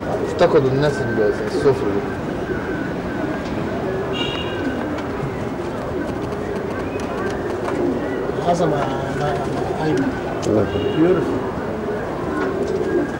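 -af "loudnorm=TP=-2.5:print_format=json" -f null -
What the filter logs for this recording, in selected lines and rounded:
"input_i" : "-21.0",
"input_tp" : "-7.2",
"input_lra" : "3.8",
"input_thresh" : "-31.0",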